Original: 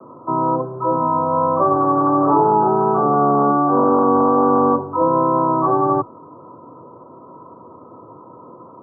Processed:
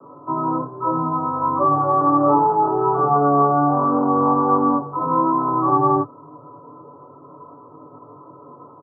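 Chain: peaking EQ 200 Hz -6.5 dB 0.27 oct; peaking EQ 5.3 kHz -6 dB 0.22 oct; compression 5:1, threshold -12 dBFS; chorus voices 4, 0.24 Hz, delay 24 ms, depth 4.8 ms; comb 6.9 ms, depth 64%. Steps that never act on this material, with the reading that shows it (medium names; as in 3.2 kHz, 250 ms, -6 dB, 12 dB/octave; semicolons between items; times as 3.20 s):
peaking EQ 5.3 kHz: input has nothing above 1.4 kHz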